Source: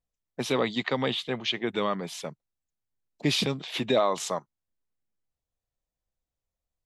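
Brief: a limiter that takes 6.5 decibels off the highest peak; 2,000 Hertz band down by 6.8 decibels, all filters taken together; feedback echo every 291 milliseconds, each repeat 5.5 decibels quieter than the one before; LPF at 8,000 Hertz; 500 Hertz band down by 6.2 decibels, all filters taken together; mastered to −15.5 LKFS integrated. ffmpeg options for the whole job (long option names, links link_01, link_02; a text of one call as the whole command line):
ffmpeg -i in.wav -af "lowpass=8000,equalizer=frequency=500:width_type=o:gain=-7.5,equalizer=frequency=2000:width_type=o:gain=-8,alimiter=limit=-23dB:level=0:latency=1,aecho=1:1:291|582|873|1164|1455|1746|2037:0.531|0.281|0.149|0.079|0.0419|0.0222|0.0118,volume=18.5dB" out.wav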